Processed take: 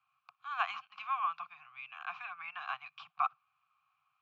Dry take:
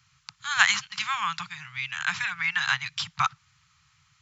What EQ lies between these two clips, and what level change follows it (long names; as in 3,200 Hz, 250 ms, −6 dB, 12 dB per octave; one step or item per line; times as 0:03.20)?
formant filter a
high-frequency loss of the air 130 metres
parametric band 1,100 Hz +7.5 dB 1.9 octaves
−3.0 dB